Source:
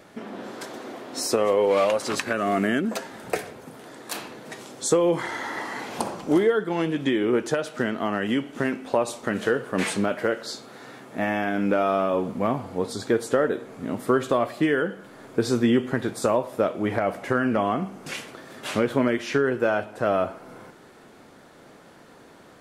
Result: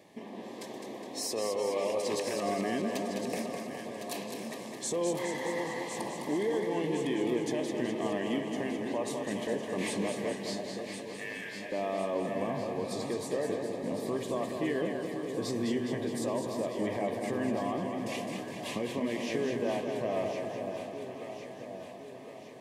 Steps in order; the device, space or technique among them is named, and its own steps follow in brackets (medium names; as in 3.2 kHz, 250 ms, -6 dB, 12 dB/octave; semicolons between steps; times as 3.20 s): PA system with an anti-feedback notch (high-pass 100 Hz; Butterworth band-stop 1.4 kHz, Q 2.4; peak limiter -17.5 dBFS, peak gain reduction 9 dB); 10.32–11.72 s: steep high-pass 1.3 kHz 72 dB/octave; echo whose repeats swap between lows and highs 529 ms, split 890 Hz, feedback 73%, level -6 dB; modulated delay 207 ms, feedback 63%, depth 59 cents, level -6 dB; trim -7 dB